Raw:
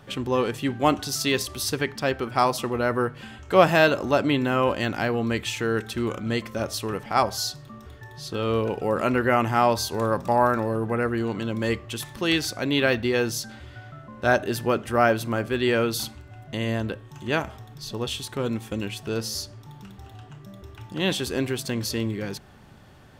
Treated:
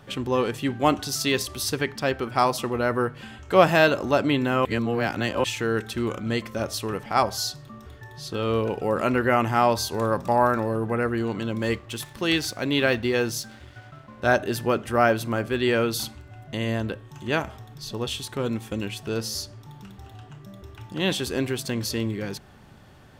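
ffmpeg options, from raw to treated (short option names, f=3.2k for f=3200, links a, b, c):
-filter_complex "[0:a]asettb=1/sr,asplit=3[a][b][c];[a]atrim=end=11.584[d];[b]atrim=start=11.58:end=14.2,asetpts=PTS-STARTPTS,afade=t=in:d=0.004:c=qsin,afade=t=out:st=2.616:d=0.004:c=qsin,aeval=exprs='sgn(val(0))*max(abs(val(0))-0.00316,0)':c=same[e];[c]atrim=start=14.196[f];[d][e]acrossfade=d=0.004:c1=hsin:c2=qsin[g];[g][f]acrossfade=d=0.004:c1=qsin:c2=hsin,asplit=3[h][i][j];[h]atrim=end=4.652[k];[i]atrim=start=4.648:end=5.442,asetpts=PTS-STARTPTS,areverse[l];[j]atrim=start=5.438[m];[k][l]acrossfade=d=0.004:c1=hsin:c2=hsin[n];[n][m]acrossfade=d=0.004:c1=hsin:c2=hsin"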